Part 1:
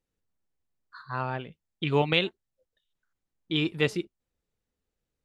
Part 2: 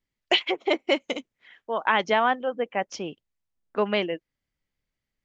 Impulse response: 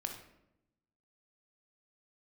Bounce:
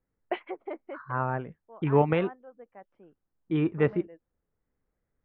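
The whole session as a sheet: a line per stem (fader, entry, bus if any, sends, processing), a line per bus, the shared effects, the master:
+2.5 dB, 0.00 s, no send, none
+0.5 dB, 0.00 s, no send, auto duck -22 dB, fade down 1.15 s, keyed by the first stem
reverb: none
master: low-pass 1.7 kHz 24 dB/octave

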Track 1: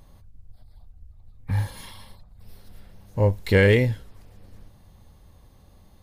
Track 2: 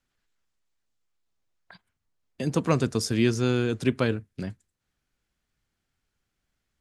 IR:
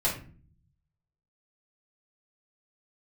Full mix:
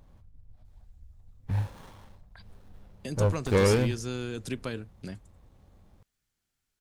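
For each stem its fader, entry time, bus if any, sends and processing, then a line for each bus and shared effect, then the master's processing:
-4.0 dB, 0.00 s, no send, sliding maximum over 17 samples
-6.0 dB, 0.65 s, no send, treble shelf 4.7 kHz +11 dB; compression 2:1, threshold -27 dBFS, peak gain reduction 6.5 dB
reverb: none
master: none

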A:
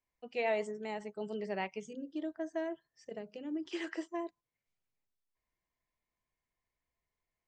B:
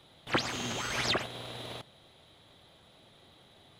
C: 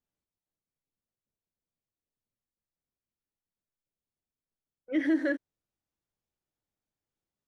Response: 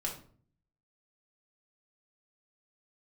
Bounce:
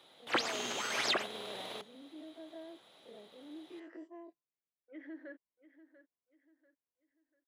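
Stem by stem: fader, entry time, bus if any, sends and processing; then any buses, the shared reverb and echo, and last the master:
-17.5 dB, 0.00 s, no send, no echo send, every event in the spectrogram widened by 60 ms; tilt EQ -4.5 dB/octave
-1.5 dB, 0.00 s, no send, no echo send, none
-18.5 dB, 0.00 s, no send, echo send -14.5 dB, low-pass 2.4 kHz 12 dB/octave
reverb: none
echo: feedback delay 691 ms, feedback 35%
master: high-pass 320 Hz 12 dB/octave

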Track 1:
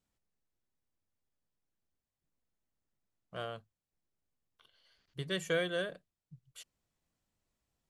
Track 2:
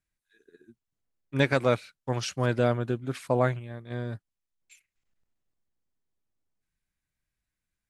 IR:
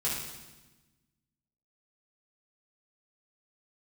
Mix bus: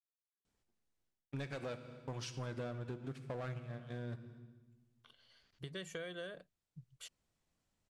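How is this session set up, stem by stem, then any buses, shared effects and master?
+1.5 dB, 0.45 s, no send, compression 2:1, threshold -49 dBFS, peak gain reduction 11.5 dB; auto duck -18 dB, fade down 0.25 s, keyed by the second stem
-9.0 dB, 0.00 s, send -15.5 dB, waveshaping leveller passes 3; peak limiter -17.5 dBFS, peak gain reduction 8 dB; upward expansion 2.5:1, over -43 dBFS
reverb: on, RT60 1.2 s, pre-delay 3 ms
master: low-pass 10 kHz 12 dB/octave; compression 6:1, threshold -40 dBFS, peak gain reduction 11.5 dB

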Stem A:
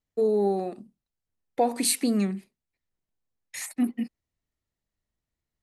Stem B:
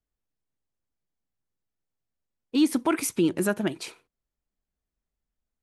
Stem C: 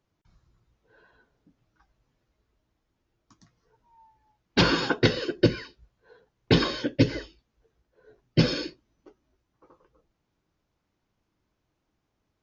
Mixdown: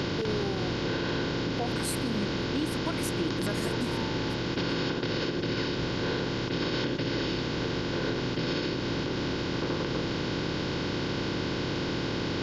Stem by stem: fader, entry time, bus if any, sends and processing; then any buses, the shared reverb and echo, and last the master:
-9.0 dB, 0.00 s, no send, no echo send, none
-8.5 dB, 0.00 s, no send, echo send -18.5 dB, none
-5.5 dB, 0.00 s, no send, no echo send, spectral levelling over time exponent 0.2; compression, threshold -19 dBFS, peak gain reduction 10 dB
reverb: none
echo: delay 879 ms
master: peak limiter -20 dBFS, peak gain reduction 7 dB

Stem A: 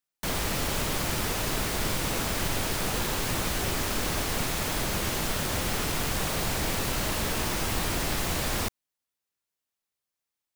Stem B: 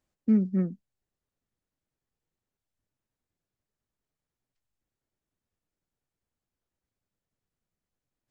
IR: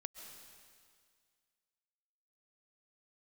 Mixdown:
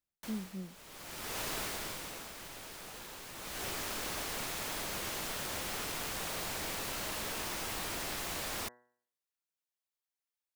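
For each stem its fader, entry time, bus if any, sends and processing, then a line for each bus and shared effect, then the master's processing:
1.63 s -6.5 dB -> 2.34 s -16.5 dB -> 3.33 s -16.5 dB -> 3.64 s -7.5 dB, 0.00 s, no send, bass shelf 240 Hz -11 dB; de-hum 121.9 Hz, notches 16; auto duck -19 dB, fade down 0.60 s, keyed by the second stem
-16.5 dB, 0.00 s, no send, none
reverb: none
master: none

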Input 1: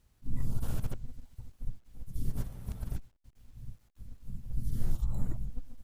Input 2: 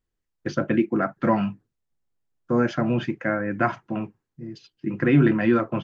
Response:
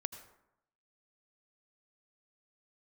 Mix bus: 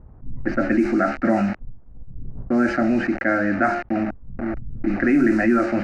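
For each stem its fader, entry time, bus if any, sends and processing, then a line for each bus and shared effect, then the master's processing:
-6.0 dB, 0.00 s, no send, low-pass 1.1 kHz 12 dB/octave; auto duck -8 dB, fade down 0.20 s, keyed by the second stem
+2.5 dB, 0.00 s, no send, de-hum 70.42 Hz, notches 38; word length cut 6-bit, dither none; static phaser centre 680 Hz, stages 8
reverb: none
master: low-pass 4 kHz 12 dB/octave; level-controlled noise filter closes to 1.2 kHz, open at -14.5 dBFS; level flattener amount 50%

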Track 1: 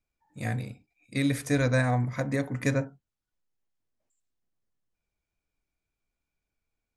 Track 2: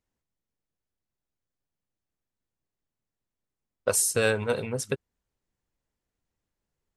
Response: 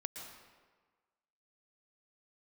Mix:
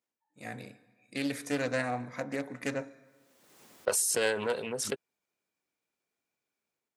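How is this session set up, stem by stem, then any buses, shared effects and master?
-17.0 dB, 0.00 s, send -12 dB, level rider gain up to 15.5 dB
-4.5 dB, 0.00 s, no send, swell ahead of each attack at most 33 dB/s; auto duck -23 dB, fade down 0.25 s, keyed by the first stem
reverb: on, RT60 1.4 s, pre-delay 108 ms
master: high-pass 260 Hz 12 dB/octave; loudspeaker Doppler distortion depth 0.21 ms

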